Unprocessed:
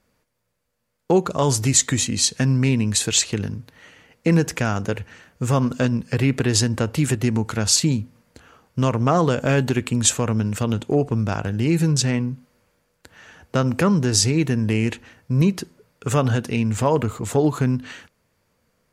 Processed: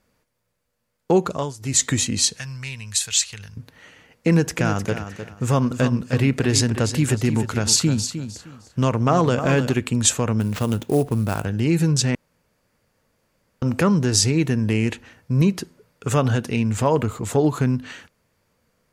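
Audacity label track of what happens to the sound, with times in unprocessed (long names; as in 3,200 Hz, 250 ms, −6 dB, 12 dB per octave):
1.290000	1.830000	duck −19 dB, fades 0.24 s
2.390000	3.570000	guitar amp tone stack bass-middle-treble 10-0-10
4.280000	9.740000	repeating echo 307 ms, feedback 23%, level −10 dB
10.400000	11.450000	sample-rate reduction 10,000 Hz, jitter 20%
12.150000	13.620000	fill with room tone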